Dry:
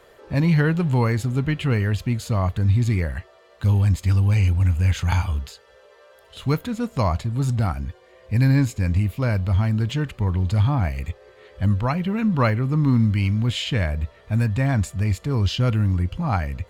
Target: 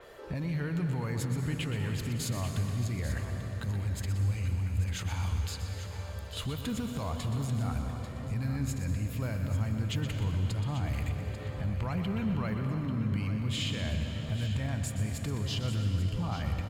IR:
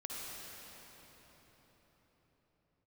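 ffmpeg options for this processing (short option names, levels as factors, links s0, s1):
-filter_complex "[0:a]acompressor=threshold=0.0562:ratio=6,alimiter=level_in=1.41:limit=0.0631:level=0:latency=1,volume=0.708,aecho=1:1:841:0.266,asplit=2[s0][s1];[1:a]atrim=start_sample=2205,adelay=123[s2];[s1][s2]afir=irnorm=-1:irlink=0,volume=0.596[s3];[s0][s3]amix=inputs=2:normalize=0,adynamicequalizer=threshold=0.00178:dfrequency=5800:dqfactor=0.7:tfrequency=5800:tqfactor=0.7:attack=5:release=100:ratio=0.375:range=2:mode=boostabove:tftype=highshelf"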